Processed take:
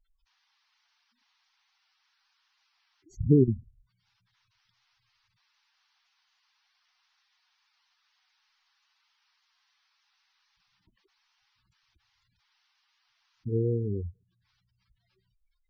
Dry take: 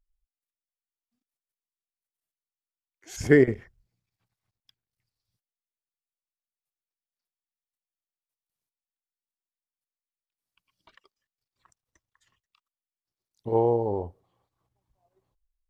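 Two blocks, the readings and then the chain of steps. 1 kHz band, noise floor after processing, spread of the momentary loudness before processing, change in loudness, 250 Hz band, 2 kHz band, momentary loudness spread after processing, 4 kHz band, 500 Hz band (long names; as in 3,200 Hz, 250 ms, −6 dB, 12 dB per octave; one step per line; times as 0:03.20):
below −35 dB, −76 dBFS, 22 LU, −3.5 dB, −1.0 dB, below −30 dB, 17 LU, below −10 dB, −7.5 dB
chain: drawn EQ curve 200 Hz 0 dB, 1,100 Hz −25 dB, 4,600 Hz −17 dB
noise in a band 790–5,700 Hz −77 dBFS
gate on every frequency bin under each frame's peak −10 dB strong
level +4.5 dB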